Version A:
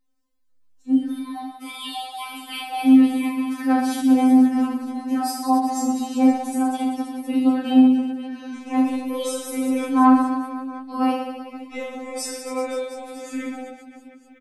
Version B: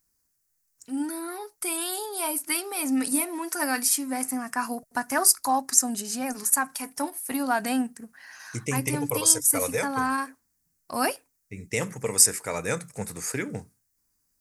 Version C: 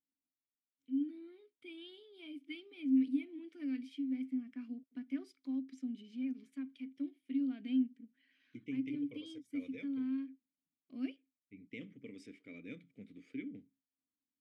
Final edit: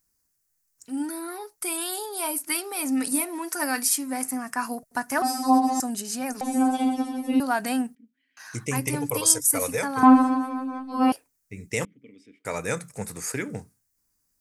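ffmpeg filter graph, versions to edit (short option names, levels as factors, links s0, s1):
-filter_complex "[0:a]asplit=3[s0][s1][s2];[2:a]asplit=2[s3][s4];[1:a]asplit=6[s5][s6][s7][s8][s9][s10];[s5]atrim=end=5.222[s11];[s0]atrim=start=5.218:end=5.802[s12];[s6]atrim=start=5.798:end=6.412[s13];[s1]atrim=start=6.408:end=7.402[s14];[s7]atrim=start=7.398:end=7.952[s15];[s3]atrim=start=7.948:end=8.372[s16];[s8]atrim=start=8.368:end=10.032[s17];[s2]atrim=start=10.028:end=11.122[s18];[s9]atrim=start=11.118:end=11.852[s19];[s4]atrim=start=11.848:end=12.452[s20];[s10]atrim=start=12.448[s21];[s11][s12]acrossfade=d=0.004:c1=hsin:c2=hsin[s22];[s22][s13]acrossfade=d=0.004:c1=hsin:c2=hsin[s23];[s23][s14]acrossfade=d=0.004:c1=hsin:c2=hsin[s24];[s24][s15]acrossfade=d=0.004:c1=hsin:c2=hsin[s25];[s25][s16]acrossfade=d=0.004:c1=hsin:c2=hsin[s26];[s26][s17]acrossfade=d=0.004:c1=hsin:c2=hsin[s27];[s27][s18]acrossfade=d=0.004:c1=hsin:c2=hsin[s28];[s28][s19]acrossfade=d=0.004:c1=hsin:c2=hsin[s29];[s29][s20]acrossfade=d=0.004:c1=hsin:c2=hsin[s30];[s30][s21]acrossfade=d=0.004:c1=hsin:c2=hsin"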